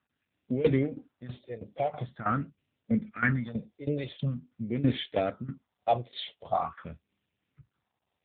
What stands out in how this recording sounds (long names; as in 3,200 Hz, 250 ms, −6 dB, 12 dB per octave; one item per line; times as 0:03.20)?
tremolo saw down 3.1 Hz, depth 85%
phaser sweep stages 4, 0.45 Hz, lowest notch 220–1,200 Hz
AMR narrowband